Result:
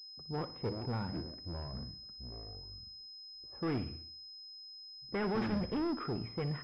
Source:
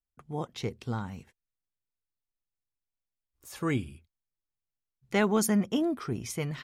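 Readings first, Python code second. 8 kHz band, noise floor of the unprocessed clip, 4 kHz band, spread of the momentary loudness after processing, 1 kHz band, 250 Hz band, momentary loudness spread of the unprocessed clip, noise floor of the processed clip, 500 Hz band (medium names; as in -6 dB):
under -30 dB, under -85 dBFS, +1.0 dB, 13 LU, -5.0 dB, -6.5 dB, 16 LU, -51 dBFS, -6.0 dB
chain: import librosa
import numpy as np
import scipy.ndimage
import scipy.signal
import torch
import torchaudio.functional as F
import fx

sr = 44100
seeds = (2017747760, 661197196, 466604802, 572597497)

y = fx.env_lowpass(x, sr, base_hz=470.0, full_db=-23.5)
y = fx.dynamic_eq(y, sr, hz=460.0, q=1.2, threshold_db=-41.0, ratio=4.0, max_db=3)
y = 10.0 ** (-31.5 / 20.0) * np.tanh(y / 10.0 ** (-31.5 / 20.0))
y = fx.echo_pitch(y, sr, ms=228, semitones=-6, count=2, db_per_echo=-6.0)
y = fx.echo_feedback(y, sr, ms=61, feedback_pct=53, wet_db=-15)
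y = fx.pwm(y, sr, carrier_hz=5100.0)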